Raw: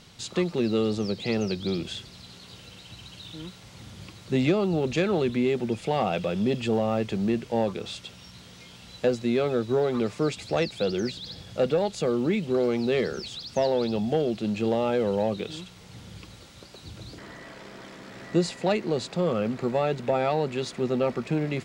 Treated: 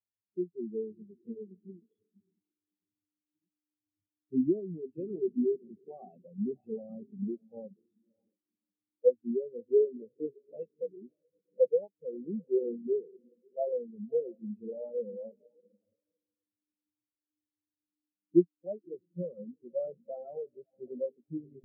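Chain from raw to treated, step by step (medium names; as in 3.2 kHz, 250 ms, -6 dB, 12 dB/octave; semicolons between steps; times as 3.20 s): high-pass 56 Hz 6 dB/octave; mains buzz 100 Hz, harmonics 4, -41 dBFS -1 dB/octave; echo that smears into a reverb 611 ms, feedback 45%, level -7 dB; spectral contrast expander 4:1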